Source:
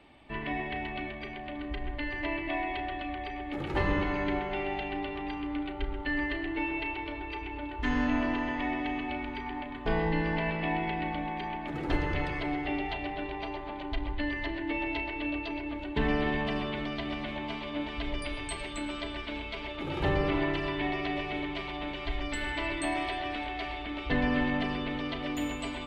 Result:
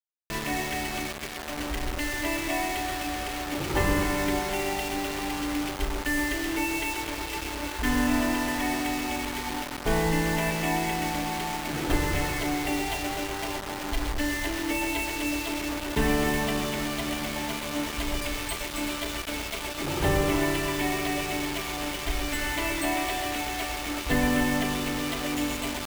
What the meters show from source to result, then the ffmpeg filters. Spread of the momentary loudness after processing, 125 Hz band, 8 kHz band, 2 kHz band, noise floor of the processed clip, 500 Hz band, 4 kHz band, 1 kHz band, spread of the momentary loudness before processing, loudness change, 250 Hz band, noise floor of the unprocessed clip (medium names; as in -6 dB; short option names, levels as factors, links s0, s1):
7 LU, +3.5 dB, +19.0 dB, +4.5 dB, -35 dBFS, +3.5 dB, +7.5 dB, +4.0 dB, 8 LU, +4.5 dB, +3.5 dB, -40 dBFS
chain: -af "acrusher=bits=5:mix=0:aa=0.000001,volume=1.5"